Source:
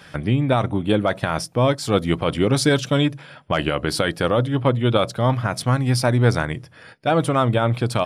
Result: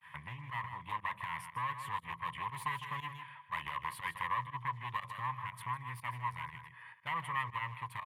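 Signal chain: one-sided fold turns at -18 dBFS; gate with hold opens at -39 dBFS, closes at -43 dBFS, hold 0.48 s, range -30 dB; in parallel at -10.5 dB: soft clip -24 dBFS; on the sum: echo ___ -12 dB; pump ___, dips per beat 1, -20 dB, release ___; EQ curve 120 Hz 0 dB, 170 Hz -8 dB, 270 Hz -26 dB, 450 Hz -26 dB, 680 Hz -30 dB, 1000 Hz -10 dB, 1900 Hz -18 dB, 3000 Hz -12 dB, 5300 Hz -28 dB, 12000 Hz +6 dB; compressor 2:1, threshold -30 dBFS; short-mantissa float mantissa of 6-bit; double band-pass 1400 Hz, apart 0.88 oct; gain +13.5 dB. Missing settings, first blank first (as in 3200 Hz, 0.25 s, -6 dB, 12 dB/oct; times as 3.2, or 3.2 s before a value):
0.155 s, 120 bpm, 70 ms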